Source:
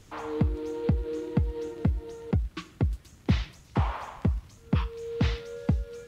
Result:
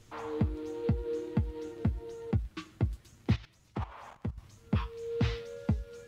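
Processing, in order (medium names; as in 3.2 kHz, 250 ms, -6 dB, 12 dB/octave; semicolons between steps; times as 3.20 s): flange 0.95 Hz, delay 8.4 ms, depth 1.1 ms, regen +50%; 3.33–4.38 s: level held to a coarse grid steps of 16 dB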